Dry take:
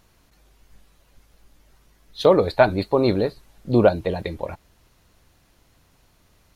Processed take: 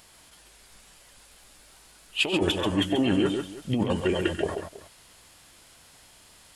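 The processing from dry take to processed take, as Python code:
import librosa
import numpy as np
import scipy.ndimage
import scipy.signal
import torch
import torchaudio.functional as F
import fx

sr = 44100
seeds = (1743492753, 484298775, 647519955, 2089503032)

p1 = fx.tilt_eq(x, sr, slope=2.5)
p2 = fx.over_compress(p1, sr, threshold_db=-24.0, ratio=-1.0)
p3 = fx.formant_shift(p2, sr, semitones=-5)
y = p3 + fx.echo_multitap(p3, sr, ms=(92, 135, 324), db=(-16.0, -6.5, -18.0), dry=0)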